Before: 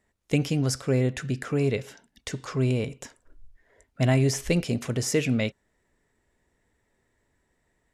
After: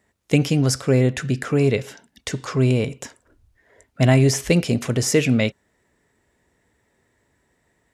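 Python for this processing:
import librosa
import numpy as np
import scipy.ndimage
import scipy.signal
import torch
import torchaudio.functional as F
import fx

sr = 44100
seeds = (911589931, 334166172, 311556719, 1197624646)

y = scipy.signal.sosfilt(scipy.signal.butter(2, 62.0, 'highpass', fs=sr, output='sos'), x)
y = y * librosa.db_to_amplitude(6.5)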